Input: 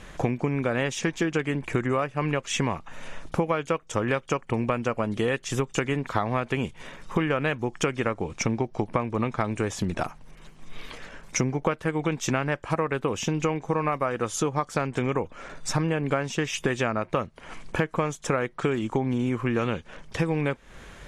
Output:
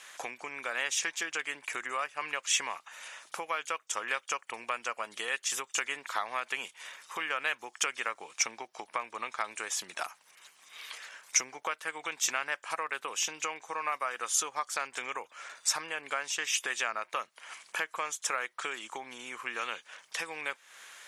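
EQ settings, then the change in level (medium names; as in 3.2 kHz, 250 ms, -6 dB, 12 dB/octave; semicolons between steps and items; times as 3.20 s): high-pass 1.1 kHz 12 dB/octave; treble shelf 5.4 kHz +10 dB; -2.0 dB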